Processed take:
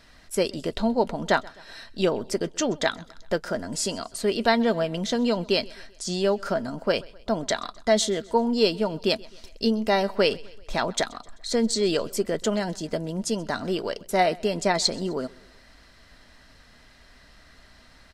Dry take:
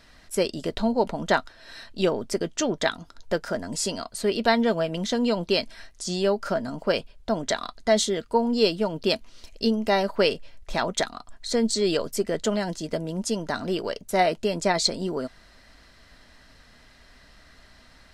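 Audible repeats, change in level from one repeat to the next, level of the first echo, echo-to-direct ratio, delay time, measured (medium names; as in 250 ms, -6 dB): 3, -5.5 dB, -23.5 dB, -22.0 dB, 129 ms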